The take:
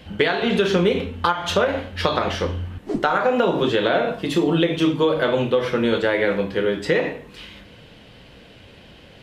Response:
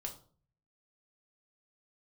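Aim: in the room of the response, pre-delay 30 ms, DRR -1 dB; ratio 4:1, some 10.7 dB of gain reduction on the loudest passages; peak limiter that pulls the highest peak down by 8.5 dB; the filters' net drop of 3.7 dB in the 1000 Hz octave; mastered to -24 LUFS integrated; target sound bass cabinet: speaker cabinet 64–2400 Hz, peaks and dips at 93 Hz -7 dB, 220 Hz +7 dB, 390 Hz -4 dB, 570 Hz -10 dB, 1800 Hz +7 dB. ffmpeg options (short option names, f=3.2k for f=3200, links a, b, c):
-filter_complex "[0:a]equalizer=f=1k:t=o:g=-4.5,acompressor=threshold=-28dB:ratio=4,alimiter=limit=-22dB:level=0:latency=1,asplit=2[a][b];[1:a]atrim=start_sample=2205,adelay=30[c];[b][c]afir=irnorm=-1:irlink=0,volume=3dB[d];[a][d]amix=inputs=2:normalize=0,highpass=f=64:w=0.5412,highpass=f=64:w=1.3066,equalizer=f=93:t=q:w=4:g=-7,equalizer=f=220:t=q:w=4:g=7,equalizer=f=390:t=q:w=4:g=-4,equalizer=f=570:t=q:w=4:g=-10,equalizer=f=1.8k:t=q:w=4:g=7,lowpass=f=2.4k:w=0.5412,lowpass=f=2.4k:w=1.3066,volume=5dB"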